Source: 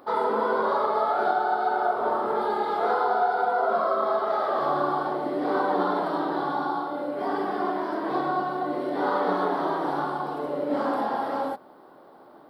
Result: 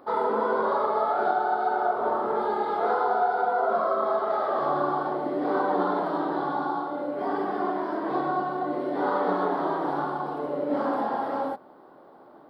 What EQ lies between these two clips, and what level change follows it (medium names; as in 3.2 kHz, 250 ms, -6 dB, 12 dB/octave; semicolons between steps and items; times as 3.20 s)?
treble shelf 2.8 kHz -8 dB; 0.0 dB